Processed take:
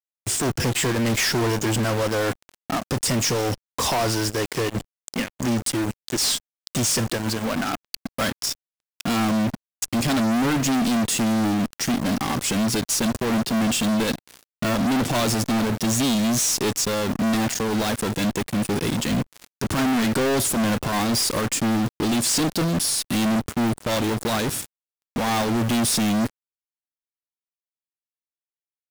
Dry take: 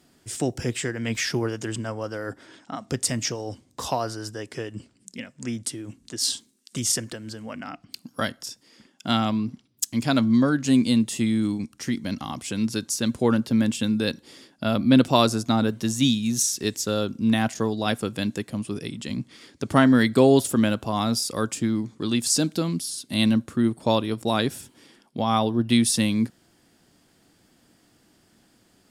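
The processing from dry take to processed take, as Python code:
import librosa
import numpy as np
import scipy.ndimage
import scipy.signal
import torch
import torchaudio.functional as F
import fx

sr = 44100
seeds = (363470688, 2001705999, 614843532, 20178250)

y = fx.fuzz(x, sr, gain_db=41.0, gate_db=-40.0)
y = fx.quant_companded(y, sr, bits=4)
y = y * 10.0 ** (-7.5 / 20.0)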